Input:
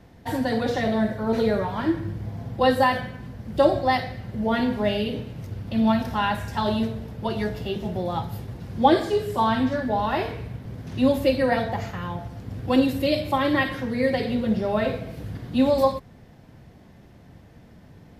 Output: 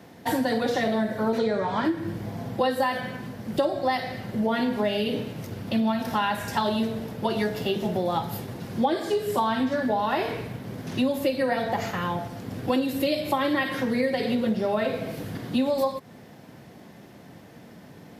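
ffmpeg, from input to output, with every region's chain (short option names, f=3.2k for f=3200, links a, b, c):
-filter_complex "[0:a]asettb=1/sr,asplit=3[a][b][c];[a]atrim=end=1.384[d];[b]atrim=start=1.38:end=1.85,asetpts=PTS-STARTPTS,afade=t=in:d=0.004:c=qsin,afade=t=out:st=0.466:d=0.004:c=qsin,lowpass=f=8.4k:w=0.5412,lowpass=f=8.4k:w=1.3066,bandreject=f=2.8k:w=13[e];[c]atrim=start=1.846[f];[d][e]acrossfade=d=0.004:c1=hsin:c2=qsin[g];[g][f]acrossfade=d=0.004:c1=qsin:c2=hsin,highpass=180,highshelf=f=7.9k:g=5.5,acompressor=threshold=-27dB:ratio=6,volume=5.5dB"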